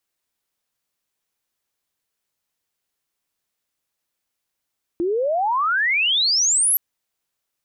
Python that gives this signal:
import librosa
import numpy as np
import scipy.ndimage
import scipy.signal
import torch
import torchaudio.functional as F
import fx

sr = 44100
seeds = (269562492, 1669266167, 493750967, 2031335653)

y = fx.chirp(sr, length_s=1.77, from_hz=330.0, to_hz=12000.0, law='logarithmic', from_db=-18.5, to_db=-14.5)